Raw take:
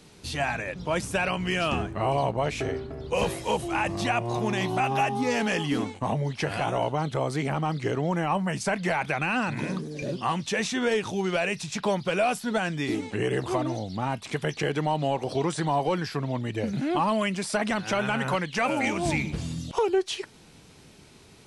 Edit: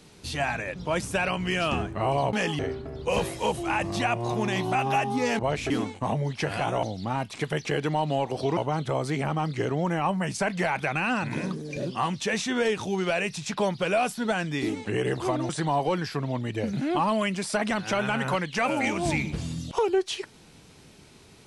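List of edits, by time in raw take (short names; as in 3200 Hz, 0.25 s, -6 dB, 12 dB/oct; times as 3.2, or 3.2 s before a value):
2.33–2.64 swap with 5.44–5.7
13.75–15.49 move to 6.83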